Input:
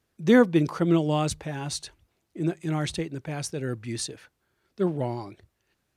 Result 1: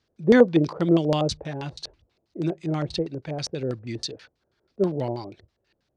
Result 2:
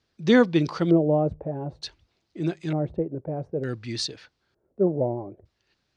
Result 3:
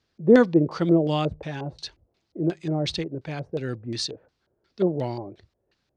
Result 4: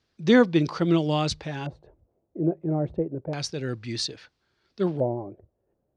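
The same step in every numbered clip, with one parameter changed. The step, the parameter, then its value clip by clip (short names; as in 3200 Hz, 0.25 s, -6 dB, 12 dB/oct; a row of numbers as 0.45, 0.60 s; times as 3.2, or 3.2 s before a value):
LFO low-pass, rate: 6.2, 0.55, 2.8, 0.3 Hz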